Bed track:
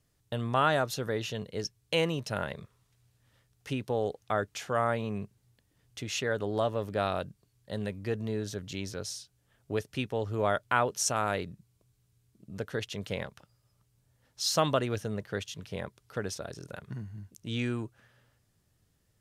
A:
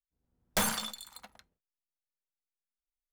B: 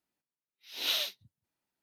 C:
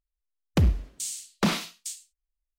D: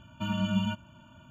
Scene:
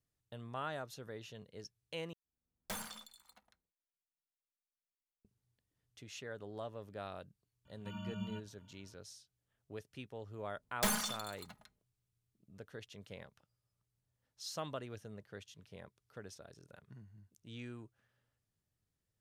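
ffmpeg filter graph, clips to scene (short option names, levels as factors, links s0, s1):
-filter_complex "[1:a]asplit=2[s0][s1];[0:a]volume=0.168[s2];[s1]aecho=1:1:4.8:0.5[s3];[s2]asplit=2[s4][s5];[s4]atrim=end=2.134[s6];[s0]atrim=end=3.12,asetpts=PTS-STARTPTS,volume=0.2[s7];[s5]atrim=start=5.246[s8];[4:a]atrim=end=1.3,asetpts=PTS-STARTPTS,volume=0.178,afade=t=in:d=0.004:c=hsin,afade=t=out:st=1.296:d=0.004:c=hsin,adelay=7650[s9];[s3]atrim=end=3.12,asetpts=PTS-STARTPTS,volume=0.562,afade=t=in:d=0.004:c=hsin,afade=t=out:st=3.116:d=0.004:c=hsin,adelay=452466S[s10];[s6][s7]acrossfade=d=0.004:c1=hsin:c2=hsin[s11];[s11][s8]acrossfade=d=0.004:c1=hsin:c2=hsin[s12];[s12][s9][s10]amix=inputs=3:normalize=0"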